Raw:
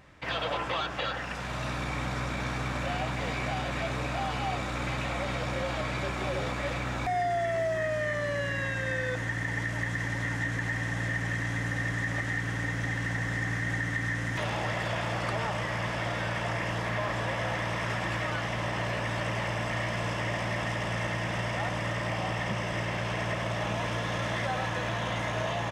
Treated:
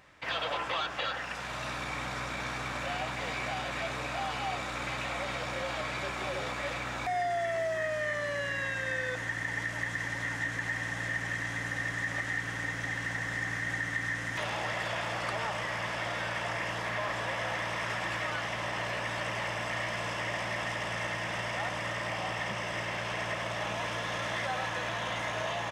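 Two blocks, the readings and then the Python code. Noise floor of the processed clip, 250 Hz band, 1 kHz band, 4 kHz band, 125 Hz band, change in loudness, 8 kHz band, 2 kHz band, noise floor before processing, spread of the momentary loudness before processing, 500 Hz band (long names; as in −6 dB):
−37 dBFS, −7.0 dB, −1.5 dB, 0.0 dB, −9.0 dB, −2.0 dB, 0.0 dB, −0.5 dB, −33 dBFS, 2 LU, −3.0 dB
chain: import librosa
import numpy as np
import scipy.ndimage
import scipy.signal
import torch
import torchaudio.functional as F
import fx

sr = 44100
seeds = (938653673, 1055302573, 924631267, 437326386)

y = fx.low_shelf(x, sr, hz=390.0, db=-10.0)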